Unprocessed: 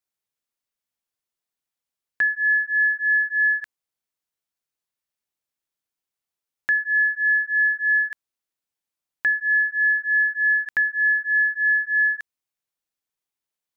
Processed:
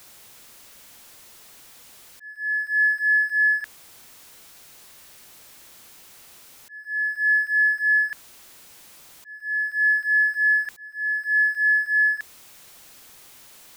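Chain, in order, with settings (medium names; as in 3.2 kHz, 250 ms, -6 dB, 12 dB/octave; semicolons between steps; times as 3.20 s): jump at every zero crossing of -41 dBFS; slow attack 641 ms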